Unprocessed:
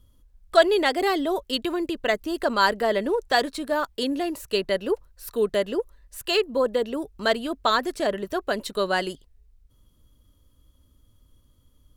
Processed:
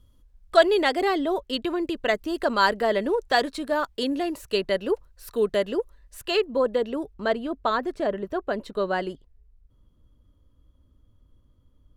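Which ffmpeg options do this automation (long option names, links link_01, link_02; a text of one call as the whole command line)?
ffmpeg -i in.wav -af "asetnsamples=nb_out_samples=441:pad=0,asendcmd='1.02 lowpass f 3400;1.87 lowpass f 6500;6.26 lowpass f 3200;7.14 lowpass f 1200',lowpass=frequency=6700:poles=1" out.wav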